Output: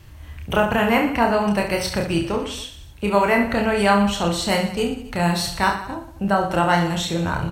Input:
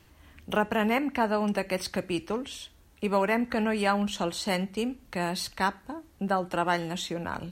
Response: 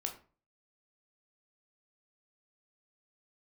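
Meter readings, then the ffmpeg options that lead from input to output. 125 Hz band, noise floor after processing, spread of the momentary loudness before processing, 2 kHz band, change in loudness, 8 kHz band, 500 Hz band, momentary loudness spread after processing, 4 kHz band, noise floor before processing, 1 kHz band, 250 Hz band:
+11.5 dB, -42 dBFS, 8 LU, +8.5 dB, +8.5 dB, +8.5 dB, +8.0 dB, 10 LU, +8.5 dB, -58 dBFS, +8.5 dB, +8.0 dB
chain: -filter_complex "[0:a]lowshelf=f=160:t=q:w=1.5:g=8,aecho=1:1:30|69|119.7|185.6|271.3:0.631|0.398|0.251|0.158|0.1,asplit=2[a][b];[1:a]atrim=start_sample=2205[c];[b][c]afir=irnorm=-1:irlink=0,volume=-6.5dB[d];[a][d]amix=inputs=2:normalize=0,volume=3.5dB"

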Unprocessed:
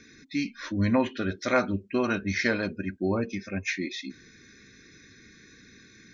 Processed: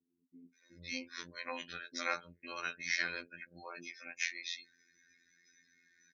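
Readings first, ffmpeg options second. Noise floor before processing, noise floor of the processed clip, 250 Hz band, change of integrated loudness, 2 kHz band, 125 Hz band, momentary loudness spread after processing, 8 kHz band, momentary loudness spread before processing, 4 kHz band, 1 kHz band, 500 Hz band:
-55 dBFS, -81 dBFS, -24.5 dB, -11.5 dB, -6.5 dB, -28.0 dB, 13 LU, n/a, 7 LU, -4.0 dB, -11.0 dB, -19.5 dB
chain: -filter_complex "[0:a]afftdn=nr=18:nf=-48,lowpass=f=3k:p=1,aderivative,acrossover=split=410[a][b];[b]adelay=540[c];[a][c]amix=inputs=2:normalize=0,afftfilt=real='hypot(re,im)*cos(PI*b)':imag='0':win_size=2048:overlap=0.75,volume=9.5dB"

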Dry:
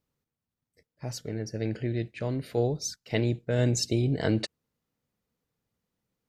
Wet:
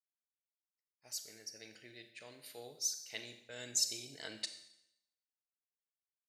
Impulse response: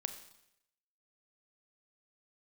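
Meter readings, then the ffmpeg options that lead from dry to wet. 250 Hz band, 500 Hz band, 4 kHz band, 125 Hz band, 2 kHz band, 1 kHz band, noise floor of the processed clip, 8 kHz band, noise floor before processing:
-27.5 dB, -23.0 dB, -3.5 dB, -34.5 dB, -11.0 dB, -18.0 dB, under -85 dBFS, -0.5 dB, under -85 dBFS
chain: -filter_complex "[0:a]aderivative,agate=range=-33dB:threshold=-57dB:ratio=3:detection=peak[a];[1:a]atrim=start_sample=2205[b];[a][b]afir=irnorm=-1:irlink=0,volume=1dB"

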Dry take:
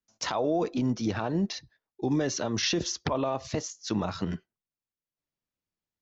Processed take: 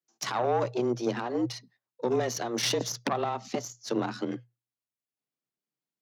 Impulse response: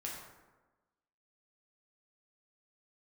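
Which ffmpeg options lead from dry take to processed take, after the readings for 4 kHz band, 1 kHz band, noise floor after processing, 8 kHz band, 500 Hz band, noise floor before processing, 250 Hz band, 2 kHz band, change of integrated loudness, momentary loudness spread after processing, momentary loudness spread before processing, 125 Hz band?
-1.5 dB, +2.5 dB, under -85 dBFS, n/a, +1.5 dB, under -85 dBFS, -3.5 dB, 0.0 dB, -0.5 dB, 8 LU, 7 LU, -5.0 dB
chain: -af "aeval=exprs='0.178*(cos(1*acos(clip(val(0)/0.178,-1,1)))-cos(1*PI/2))+0.0224*(cos(4*acos(clip(val(0)/0.178,-1,1)))-cos(4*PI/2))+0.00891*(cos(7*acos(clip(val(0)/0.178,-1,1)))-cos(7*PI/2))':c=same,afreqshift=120"

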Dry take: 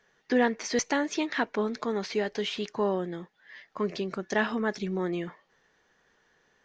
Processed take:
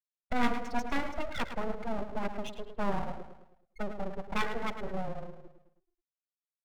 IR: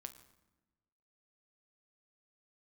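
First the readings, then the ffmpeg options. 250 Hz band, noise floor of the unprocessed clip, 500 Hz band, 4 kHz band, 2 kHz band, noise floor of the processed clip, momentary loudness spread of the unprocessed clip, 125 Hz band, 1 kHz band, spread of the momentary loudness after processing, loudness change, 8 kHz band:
-7.0 dB, -69 dBFS, -9.0 dB, -8.5 dB, -6.5 dB, under -85 dBFS, 9 LU, -3.5 dB, -1.5 dB, 10 LU, -6.5 dB, n/a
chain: -filter_complex "[1:a]atrim=start_sample=2205,afade=t=out:st=0.36:d=0.01,atrim=end_sample=16317,asetrate=26901,aresample=44100[a];[0:a][a]afir=irnorm=-1:irlink=0,afftfilt=real='re*gte(hypot(re,im),0.0794)':imag='im*gte(hypot(re,im),0.0794)':win_size=1024:overlap=0.75,acrossover=split=3300[b][c];[c]acompressor=threshold=-53dB:ratio=4:attack=1:release=60[d];[b][d]amix=inputs=2:normalize=0,asplit=2[e][f];[f]adelay=107,lowpass=f=3.4k:p=1,volume=-9dB,asplit=2[g][h];[h]adelay=107,lowpass=f=3.4k:p=1,volume=0.48,asplit=2[i][j];[j]adelay=107,lowpass=f=3.4k:p=1,volume=0.48,asplit=2[k][l];[l]adelay=107,lowpass=f=3.4k:p=1,volume=0.48,asplit=2[m][n];[n]adelay=107,lowpass=f=3.4k:p=1,volume=0.48[o];[e][g][i][k][m][o]amix=inputs=6:normalize=0,aeval=exprs='abs(val(0))':c=same,volume=1dB"

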